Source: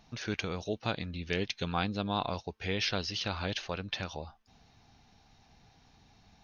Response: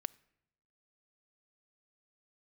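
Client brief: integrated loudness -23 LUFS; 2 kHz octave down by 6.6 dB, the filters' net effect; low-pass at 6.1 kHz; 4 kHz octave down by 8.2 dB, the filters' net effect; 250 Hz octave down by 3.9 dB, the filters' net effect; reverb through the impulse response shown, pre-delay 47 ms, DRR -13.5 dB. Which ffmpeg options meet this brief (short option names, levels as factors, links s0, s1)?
-filter_complex "[0:a]lowpass=6100,equalizer=f=250:t=o:g=-5.5,equalizer=f=2000:t=o:g=-6.5,equalizer=f=4000:t=o:g=-7.5,asplit=2[s0][s1];[1:a]atrim=start_sample=2205,adelay=47[s2];[s1][s2]afir=irnorm=-1:irlink=0,volume=6.31[s3];[s0][s3]amix=inputs=2:normalize=0,volume=1.19"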